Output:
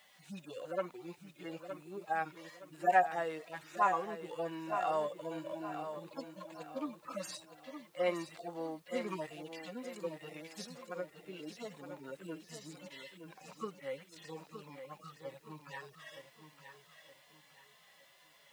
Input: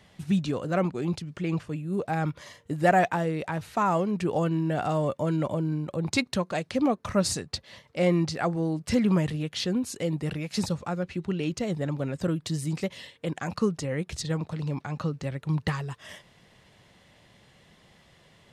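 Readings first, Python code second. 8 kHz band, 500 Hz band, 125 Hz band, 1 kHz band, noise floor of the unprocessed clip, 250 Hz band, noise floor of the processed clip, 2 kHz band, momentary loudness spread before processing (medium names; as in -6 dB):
-16.0 dB, -10.0 dB, -25.5 dB, -5.0 dB, -60 dBFS, -18.5 dB, -64 dBFS, -8.5 dB, 8 LU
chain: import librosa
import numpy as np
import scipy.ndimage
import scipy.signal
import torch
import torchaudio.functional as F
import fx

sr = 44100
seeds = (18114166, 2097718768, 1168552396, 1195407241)

y = fx.hpss_only(x, sr, part='harmonic')
y = scipy.signal.sosfilt(scipy.signal.butter(2, 690.0, 'highpass', fs=sr, output='sos'), y)
y = fx.quant_dither(y, sr, seeds[0], bits=12, dither='triangular')
y = fx.echo_feedback(y, sr, ms=917, feedback_pct=35, wet_db=-9.0)
y = y * 10.0 ** (-1.0 / 20.0)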